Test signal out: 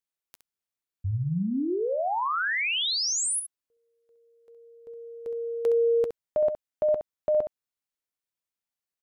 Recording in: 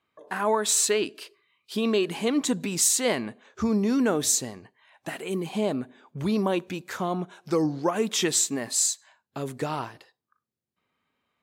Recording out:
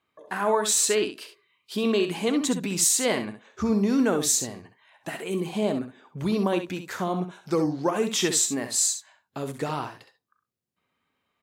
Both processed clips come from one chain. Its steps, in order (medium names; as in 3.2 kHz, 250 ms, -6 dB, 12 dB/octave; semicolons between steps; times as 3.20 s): early reflections 11 ms -18 dB, 66 ms -8.5 dB